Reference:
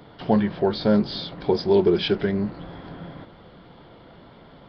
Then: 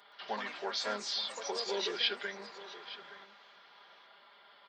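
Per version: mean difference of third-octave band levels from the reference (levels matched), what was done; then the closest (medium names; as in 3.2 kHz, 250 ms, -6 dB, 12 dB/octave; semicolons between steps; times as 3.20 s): 11.5 dB: high-pass 1.2 kHz 12 dB/octave; comb 5 ms, depth 67%; ever faster or slower copies 120 ms, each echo +3 st, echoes 3, each echo -6 dB; delay 870 ms -16 dB; trim -4.5 dB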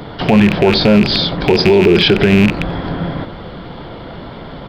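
6.0 dB: rattle on loud lows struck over -32 dBFS, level -19 dBFS; bass shelf 63 Hz +6 dB; echo from a far wall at 15 m, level -22 dB; loudness maximiser +18 dB; trim -1 dB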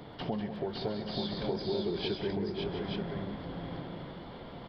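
8.5 dB: peaking EQ 1.4 kHz -4 dB 0.37 oct; compression 4:1, threshold -35 dBFS, peak gain reduction 17.5 dB; on a send: multi-tap echo 133/195/558/710/880 ms -12.5/-9.5/-4.5/-12/-5 dB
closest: second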